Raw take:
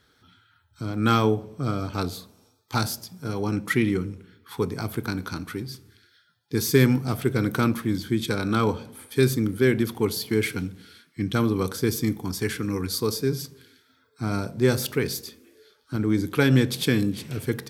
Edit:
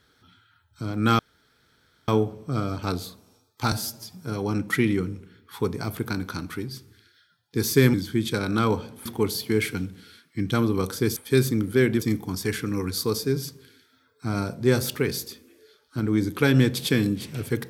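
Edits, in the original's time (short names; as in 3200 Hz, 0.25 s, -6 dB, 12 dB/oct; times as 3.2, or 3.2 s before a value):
1.19 insert room tone 0.89 s
2.83–3.1 stretch 1.5×
6.91–7.9 cut
9.02–9.87 move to 11.98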